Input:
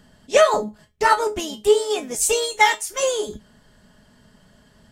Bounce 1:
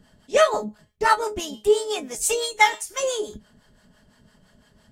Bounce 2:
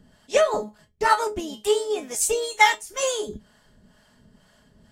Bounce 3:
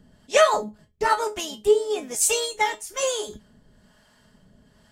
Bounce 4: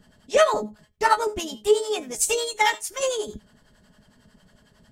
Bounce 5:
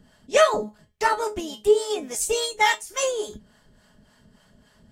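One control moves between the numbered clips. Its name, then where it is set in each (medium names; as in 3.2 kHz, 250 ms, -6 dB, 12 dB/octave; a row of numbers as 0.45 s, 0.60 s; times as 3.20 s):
harmonic tremolo, rate: 5.9 Hz, 2.1 Hz, 1.1 Hz, 11 Hz, 3.5 Hz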